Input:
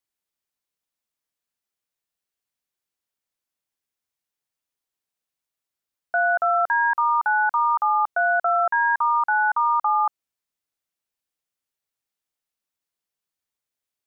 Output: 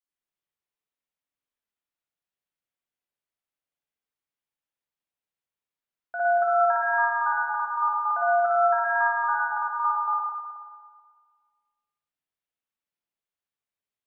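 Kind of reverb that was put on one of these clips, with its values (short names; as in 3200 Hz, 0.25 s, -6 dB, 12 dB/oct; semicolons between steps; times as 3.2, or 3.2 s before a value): spring tank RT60 1.7 s, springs 53/60 ms, chirp 55 ms, DRR -7.5 dB; gain -11.5 dB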